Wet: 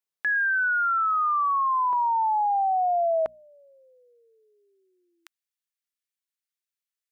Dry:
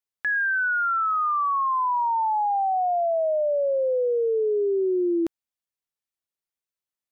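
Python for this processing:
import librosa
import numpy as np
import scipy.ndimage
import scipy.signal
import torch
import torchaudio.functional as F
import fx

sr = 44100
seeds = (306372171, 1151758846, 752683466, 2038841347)

y = fx.highpass(x, sr, hz=fx.steps((0.0, 130.0), (1.93, 350.0), (3.26, 1400.0)), slope=24)
y = fx.hum_notches(y, sr, base_hz=60, count=4)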